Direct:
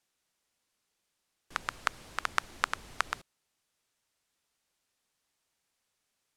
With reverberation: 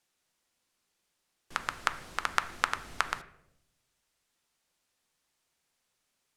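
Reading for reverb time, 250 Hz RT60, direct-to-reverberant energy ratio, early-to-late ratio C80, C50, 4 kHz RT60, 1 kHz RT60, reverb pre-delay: 0.80 s, 1.2 s, 9.5 dB, 17.5 dB, 14.5 dB, 0.50 s, 0.65 s, 6 ms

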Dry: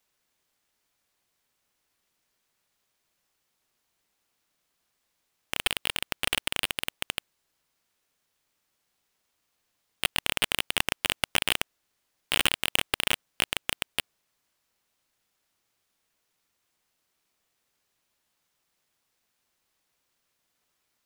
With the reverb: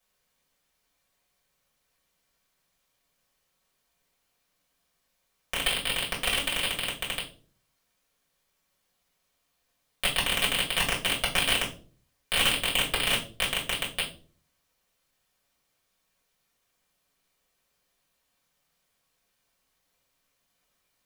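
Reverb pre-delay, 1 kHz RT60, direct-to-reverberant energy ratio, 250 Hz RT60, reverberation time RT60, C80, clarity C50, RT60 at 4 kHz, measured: 3 ms, 0.30 s, -5.5 dB, 0.65 s, 0.40 s, 16.0 dB, 11.0 dB, 0.35 s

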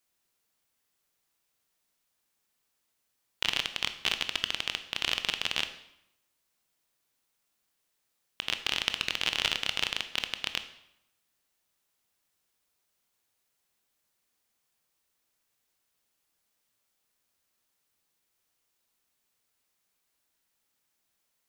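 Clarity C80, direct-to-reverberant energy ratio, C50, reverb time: 14.5 dB, 9.0 dB, 11.5 dB, 0.80 s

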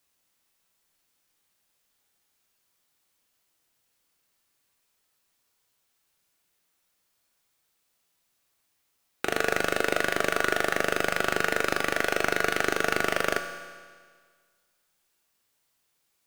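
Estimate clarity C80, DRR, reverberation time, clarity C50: 8.5 dB, 5.0 dB, 1.7 s, 7.0 dB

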